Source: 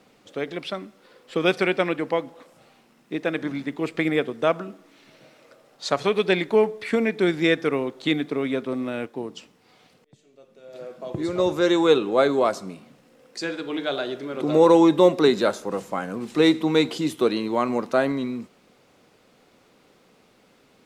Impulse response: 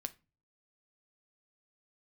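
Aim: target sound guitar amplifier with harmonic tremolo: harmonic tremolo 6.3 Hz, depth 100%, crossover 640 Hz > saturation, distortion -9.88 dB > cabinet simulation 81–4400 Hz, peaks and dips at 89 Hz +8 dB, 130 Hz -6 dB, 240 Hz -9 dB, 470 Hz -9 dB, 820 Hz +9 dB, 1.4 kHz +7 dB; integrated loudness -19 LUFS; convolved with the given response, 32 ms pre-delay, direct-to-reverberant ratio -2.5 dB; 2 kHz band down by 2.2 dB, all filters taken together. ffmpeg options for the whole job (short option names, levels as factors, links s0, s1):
-filter_complex "[0:a]equalizer=f=2000:t=o:g=-7,asplit=2[s0][s1];[1:a]atrim=start_sample=2205,adelay=32[s2];[s1][s2]afir=irnorm=-1:irlink=0,volume=1.68[s3];[s0][s3]amix=inputs=2:normalize=0,acrossover=split=640[s4][s5];[s4]aeval=exprs='val(0)*(1-1/2+1/2*cos(2*PI*6.3*n/s))':c=same[s6];[s5]aeval=exprs='val(0)*(1-1/2-1/2*cos(2*PI*6.3*n/s))':c=same[s7];[s6][s7]amix=inputs=2:normalize=0,asoftclip=threshold=0.141,highpass=81,equalizer=f=89:t=q:w=4:g=8,equalizer=f=130:t=q:w=4:g=-6,equalizer=f=240:t=q:w=4:g=-9,equalizer=f=470:t=q:w=4:g=-9,equalizer=f=820:t=q:w=4:g=9,equalizer=f=1400:t=q:w=4:g=7,lowpass=f=4400:w=0.5412,lowpass=f=4400:w=1.3066,volume=2.82"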